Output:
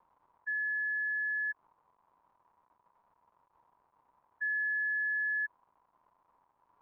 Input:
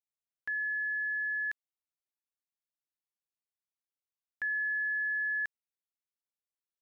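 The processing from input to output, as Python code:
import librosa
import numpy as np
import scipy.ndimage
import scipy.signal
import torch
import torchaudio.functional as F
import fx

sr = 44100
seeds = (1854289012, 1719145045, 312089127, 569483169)

y = fx.spec_expand(x, sr, power=3.7)
y = fx.dmg_crackle(y, sr, seeds[0], per_s=430.0, level_db=-63.0)
y = fx.lowpass_res(y, sr, hz=980.0, q=9.1)
y = y * librosa.db_to_amplitude(6.5)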